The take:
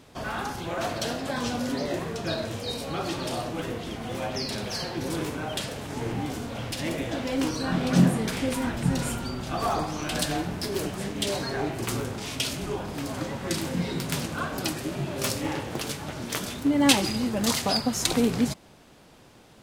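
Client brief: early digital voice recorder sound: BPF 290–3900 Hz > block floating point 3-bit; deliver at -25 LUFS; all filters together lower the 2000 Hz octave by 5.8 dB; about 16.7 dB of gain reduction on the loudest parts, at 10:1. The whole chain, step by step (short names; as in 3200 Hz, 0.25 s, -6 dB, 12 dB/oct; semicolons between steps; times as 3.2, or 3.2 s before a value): bell 2000 Hz -7.5 dB; compressor 10:1, threshold -31 dBFS; BPF 290–3900 Hz; block floating point 3-bit; gain +13 dB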